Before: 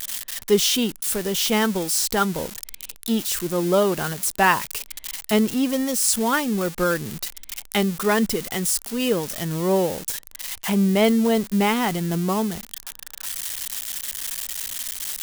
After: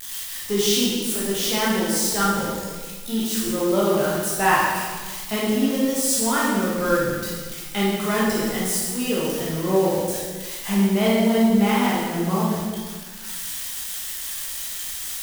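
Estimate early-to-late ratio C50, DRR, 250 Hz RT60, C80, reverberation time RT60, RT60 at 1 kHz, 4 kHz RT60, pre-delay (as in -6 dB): -1.5 dB, -7.0 dB, 1.7 s, 1.5 dB, 1.5 s, 1.5 s, 1.3 s, 12 ms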